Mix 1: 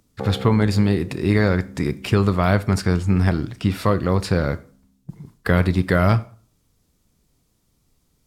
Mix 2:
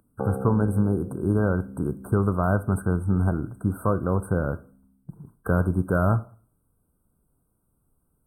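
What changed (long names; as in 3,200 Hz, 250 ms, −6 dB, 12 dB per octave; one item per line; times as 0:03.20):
speech −4.5 dB
master: add linear-phase brick-wall band-stop 1,600–8,000 Hz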